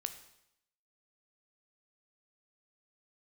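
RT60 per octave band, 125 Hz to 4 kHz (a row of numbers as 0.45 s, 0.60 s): 0.80 s, 0.80 s, 0.80 s, 0.80 s, 0.80 s, 0.80 s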